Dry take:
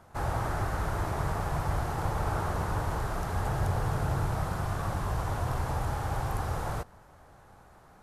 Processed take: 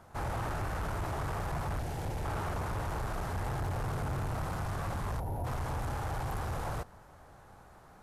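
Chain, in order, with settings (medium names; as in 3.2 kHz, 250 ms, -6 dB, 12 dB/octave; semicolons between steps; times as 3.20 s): saturation -30.5 dBFS, distortion -11 dB; 1.79–2.25 s: peaking EQ 1.2 kHz -11 dB 0.76 oct; 5.20–5.45 s: time-frequency box 980–10000 Hz -16 dB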